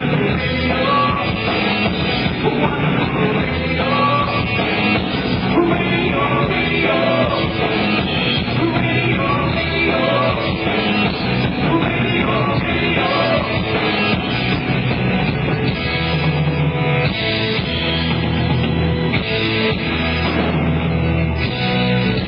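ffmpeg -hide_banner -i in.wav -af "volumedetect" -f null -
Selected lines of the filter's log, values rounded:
mean_volume: -17.1 dB
max_volume: -2.8 dB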